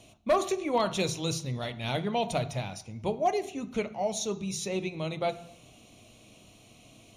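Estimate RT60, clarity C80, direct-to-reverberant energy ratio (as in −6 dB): 0.70 s, 18.0 dB, 10.0 dB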